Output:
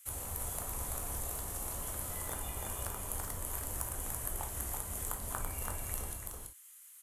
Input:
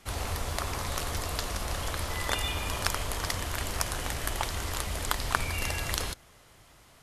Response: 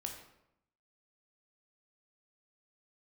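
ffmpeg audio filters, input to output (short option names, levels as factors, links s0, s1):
-filter_complex "[0:a]acrossover=split=1300[s0][s1];[s0]aeval=exprs='sgn(val(0))*max(abs(val(0))-0.00316,0)':c=same[s2];[s1]acompressor=threshold=0.00631:ratio=6[s3];[s2][s3]amix=inputs=2:normalize=0,aexciter=amount=10.7:drive=3.1:freq=7100,aecho=1:1:333:0.668[s4];[1:a]atrim=start_sample=2205,atrim=end_sample=3087[s5];[s4][s5]afir=irnorm=-1:irlink=0,volume=0.422"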